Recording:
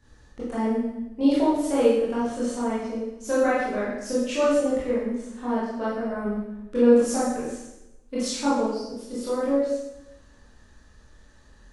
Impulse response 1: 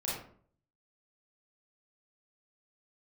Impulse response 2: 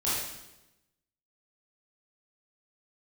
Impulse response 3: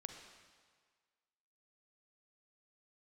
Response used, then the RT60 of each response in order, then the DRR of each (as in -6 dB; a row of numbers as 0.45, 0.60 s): 2; 0.50, 0.95, 1.7 s; -7.0, -10.0, 4.5 dB